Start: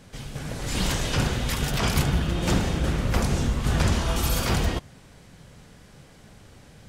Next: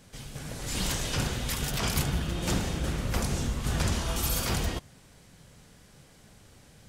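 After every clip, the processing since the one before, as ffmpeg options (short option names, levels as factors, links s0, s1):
-af "highshelf=f=4900:g=7.5,volume=0.501"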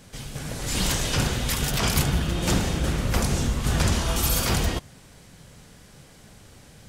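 -af "acontrast=43"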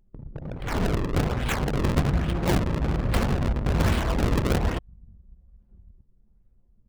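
-filter_complex "[0:a]asplit=2[s0][s1];[s1]adelay=1224,volume=0.0891,highshelf=f=4000:g=-27.6[s2];[s0][s2]amix=inputs=2:normalize=0,acrusher=samples=34:mix=1:aa=0.000001:lfo=1:lforange=54.4:lforate=1.2,anlmdn=39.8"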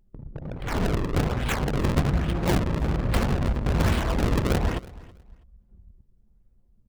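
-af "aecho=1:1:325|650:0.0891|0.0178"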